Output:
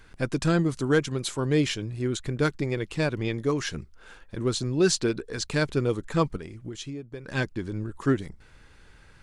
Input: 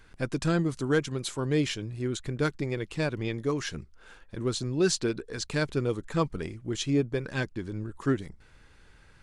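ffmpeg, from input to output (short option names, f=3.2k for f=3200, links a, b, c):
-filter_complex "[0:a]asplit=3[a][b][c];[a]afade=t=out:st=6.36:d=0.02[d];[b]acompressor=threshold=-37dB:ratio=10,afade=t=in:st=6.36:d=0.02,afade=t=out:st=7.27:d=0.02[e];[c]afade=t=in:st=7.27:d=0.02[f];[d][e][f]amix=inputs=3:normalize=0,volume=3dB"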